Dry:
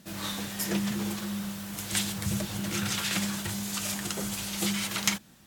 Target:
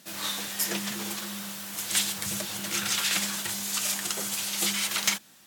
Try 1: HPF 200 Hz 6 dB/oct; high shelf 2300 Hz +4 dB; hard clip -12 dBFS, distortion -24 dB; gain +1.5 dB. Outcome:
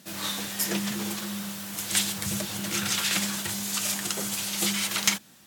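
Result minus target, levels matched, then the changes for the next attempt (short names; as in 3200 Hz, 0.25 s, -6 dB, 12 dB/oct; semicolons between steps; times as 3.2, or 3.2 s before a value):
hard clip: distortion -7 dB; 250 Hz band +5.0 dB
change: HPF 510 Hz 6 dB/oct; change: hard clip -18 dBFS, distortion -16 dB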